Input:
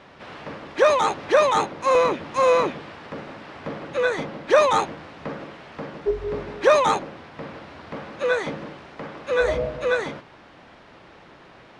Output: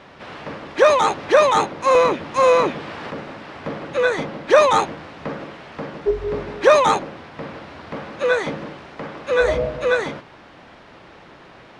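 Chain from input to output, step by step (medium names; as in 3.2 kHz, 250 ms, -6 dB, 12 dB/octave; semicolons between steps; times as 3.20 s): 2.44–3.11 s: three bands compressed up and down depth 40%; trim +3.5 dB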